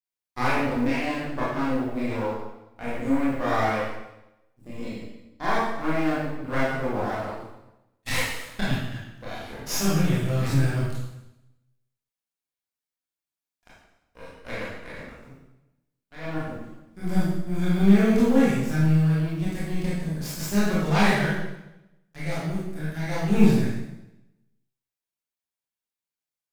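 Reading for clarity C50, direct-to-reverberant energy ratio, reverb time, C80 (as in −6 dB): −1.0 dB, −9.0 dB, 0.90 s, 2.5 dB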